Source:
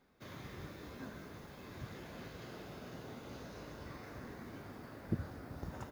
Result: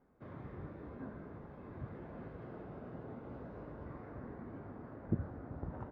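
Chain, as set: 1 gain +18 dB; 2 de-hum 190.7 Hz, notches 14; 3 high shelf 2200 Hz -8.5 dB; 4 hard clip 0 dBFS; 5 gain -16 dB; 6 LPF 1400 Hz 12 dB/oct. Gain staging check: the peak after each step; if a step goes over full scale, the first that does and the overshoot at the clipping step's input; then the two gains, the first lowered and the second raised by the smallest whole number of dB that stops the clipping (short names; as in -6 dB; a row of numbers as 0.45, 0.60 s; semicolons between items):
-4.0, -4.5, -4.5, -4.5, -20.5, -20.5 dBFS; no overload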